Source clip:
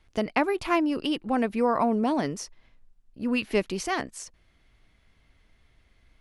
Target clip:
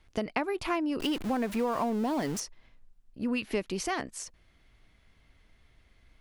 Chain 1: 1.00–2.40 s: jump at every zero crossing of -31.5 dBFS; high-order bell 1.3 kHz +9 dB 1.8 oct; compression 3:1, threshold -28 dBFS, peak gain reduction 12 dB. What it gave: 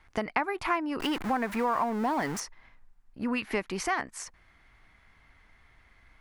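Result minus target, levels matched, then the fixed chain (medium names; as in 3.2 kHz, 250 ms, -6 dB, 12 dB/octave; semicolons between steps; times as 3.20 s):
1 kHz band +3.5 dB
1.00–2.40 s: jump at every zero crossing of -31.5 dBFS; compression 3:1, threshold -28 dBFS, peak gain reduction 8 dB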